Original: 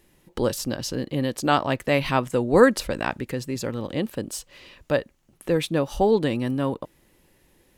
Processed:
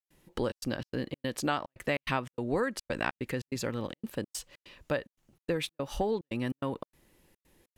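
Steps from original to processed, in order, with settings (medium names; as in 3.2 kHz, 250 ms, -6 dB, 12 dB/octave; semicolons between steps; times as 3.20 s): compression 10:1, threshold -22 dBFS, peak gain reduction 13.5 dB; trance gate ".xxxx.xx.xx" 145 bpm -60 dB; dynamic bell 2 kHz, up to +5 dB, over -46 dBFS, Q 0.82; trim -4.5 dB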